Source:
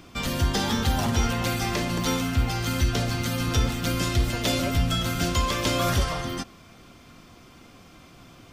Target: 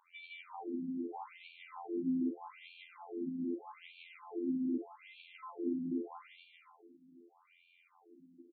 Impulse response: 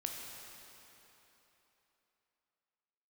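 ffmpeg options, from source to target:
-filter_complex "[0:a]acrossover=split=490[a][b];[b]acompressor=threshold=-34dB:ratio=6[c];[a][c]amix=inputs=2:normalize=0,asplit=3[d][e][f];[d]bandpass=f=300:t=q:w=8,volume=0dB[g];[e]bandpass=f=870:t=q:w=8,volume=-6dB[h];[f]bandpass=f=2.24k:t=q:w=8,volume=-9dB[i];[g][h][i]amix=inputs=3:normalize=0,afftfilt=real='hypot(re,im)*cos(PI*b)':imag='0':win_size=2048:overlap=0.75,asplit=2[j][k];[k]aecho=0:1:160|272|350.4|405.3|443.7:0.631|0.398|0.251|0.158|0.1[l];[j][l]amix=inputs=2:normalize=0,asplit=2[m][n];[n]asetrate=55563,aresample=44100,atempo=0.793701,volume=-11dB[o];[m][o]amix=inputs=2:normalize=0,afftfilt=real='re*between(b*sr/1024,210*pow(3200/210,0.5+0.5*sin(2*PI*0.81*pts/sr))/1.41,210*pow(3200/210,0.5+0.5*sin(2*PI*0.81*pts/sr))*1.41)':imag='im*between(b*sr/1024,210*pow(3200/210,0.5+0.5*sin(2*PI*0.81*pts/sr))/1.41,210*pow(3200/210,0.5+0.5*sin(2*PI*0.81*pts/sr))*1.41)':win_size=1024:overlap=0.75,volume=7.5dB"

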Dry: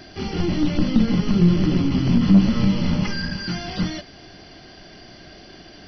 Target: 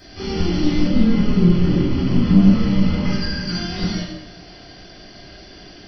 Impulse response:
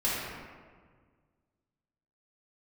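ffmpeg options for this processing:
-filter_complex "[0:a]asetnsamples=n=441:p=0,asendcmd='0.84 highshelf g -3.5;3.09 highshelf g 8',highshelf=f=5k:g=10.5[a];[1:a]atrim=start_sample=2205,asetrate=88200,aresample=44100[b];[a][b]afir=irnorm=-1:irlink=0,volume=-3.5dB"

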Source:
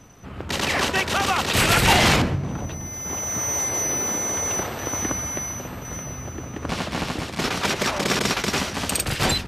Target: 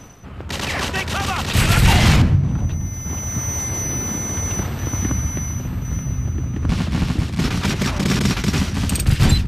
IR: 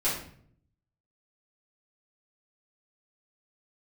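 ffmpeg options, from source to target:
-af "asubboost=boost=7:cutoff=200,areverse,acompressor=mode=upward:threshold=-28dB:ratio=2.5,areverse,volume=-1dB"

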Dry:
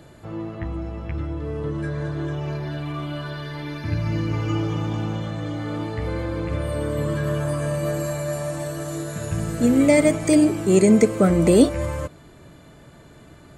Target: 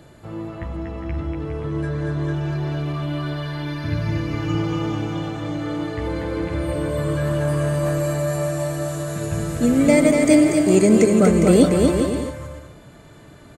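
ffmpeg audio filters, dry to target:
-filter_complex "[0:a]aecho=1:1:240|408|525.6|607.9|665.5:0.631|0.398|0.251|0.158|0.1,asettb=1/sr,asplit=3[a][b][c];[a]atrim=end=7.194[d];[b]atrim=start=7.19:end=8.37,asetpts=PTS-STARTPTS,afade=t=in:d=0.004:c=qsin,afade=t=out:st=1.176:d=0.004:c=qsin,aeval=exprs='clip(val(0),-1,0.141)':c=same[e];[c]atrim=start=8.366[f];[d][e]acrossfade=d=0.004:c1=hsin:c2=qsin[g];[g][f]acrossfade=d=0.004:c1=qsin:c2=hsin"

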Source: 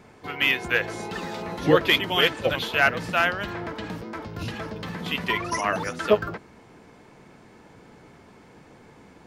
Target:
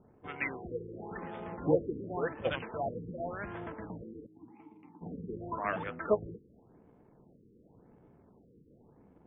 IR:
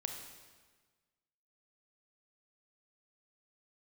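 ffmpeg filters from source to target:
-filter_complex "[0:a]adynamicsmooth=sensitivity=5:basefreq=530,asplit=3[a][b][c];[a]afade=t=out:st=4.25:d=0.02[d];[b]asplit=3[e][f][g];[e]bandpass=f=300:t=q:w=8,volume=0dB[h];[f]bandpass=f=870:t=q:w=8,volume=-6dB[i];[g]bandpass=f=2.24k:t=q:w=8,volume=-9dB[j];[h][i][j]amix=inputs=3:normalize=0,afade=t=in:st=4.25:d=0.02,afade=t=out:st=5.01:d=0.02[k];[c]afade=t=in:st=5.01:d=0.02[l];[d][k][l]amix=inputs=3:normalize=0,afftfilt=real='re*lt(b*sr/1024,490*pow(3700/490,0.5+0.5*sin(2*PI*0.9*pts/sr)))':imag='im*lt(b*sr/1024,490*pow(3700/490,0.5+0.5*sin(2*PI*0.9*pts/sr)))':win_size=1024:overlap=0.75,volume=-8.5dB"

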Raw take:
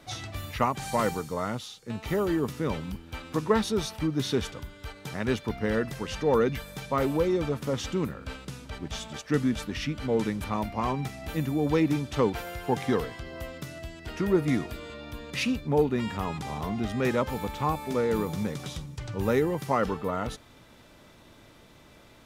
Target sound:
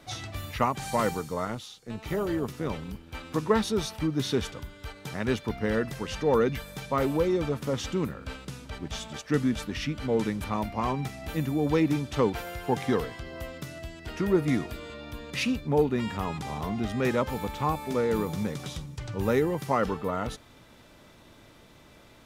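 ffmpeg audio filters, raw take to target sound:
-filter_complex "[0:a]asettb=1/sr,asplit=3[a][b][c];[a]atrim=end=1.454[d];[b]atrim=start=1.45:end=3.15,asetpts=PTS-STARTPTS,afade=t=in:d=0.004:c=qsin,afade=t=out:st=1.696:d=0.004:c=qsin,tremolo=f=230:d=0.519[e];[c]atrim=start=3.146[f];[d][e]acrossfade=d=0.004:c1=hsin:c2=qsin[g];[g][f]acrossfade=d=0.004:c1=qsin:c2=hsin"

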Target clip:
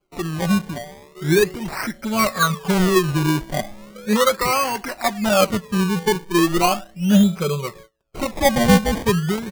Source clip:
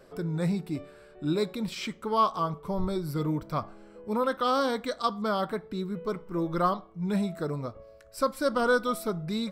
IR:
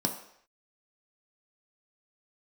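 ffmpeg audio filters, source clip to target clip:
-af "afftfilt=real='re*pow(10,17/40*sin(2*PI*(0.73*log(max(b,1)*sr/1024/100)/log(2)-(-0.62)*(pts-256)/sr)))':imag='im*pow(10,17/40*sin(2*PI*(0.73*log(max(b,1)*sr/1024/100)/log(2)-(-0.62)*(pts-256)/sr)))':win_size=1024:overlap=0.75,agate=range=-25dB:threshold=-48dB:ratio=16:detection=peak,highshelf=f=7.9k:g=4,aecho=1:1:5.3:0.61,acrusher=samples=23:mix=1:aa=0.000001:lfo=1:lforange=23:lforate=0.37,volume=4.5dB"

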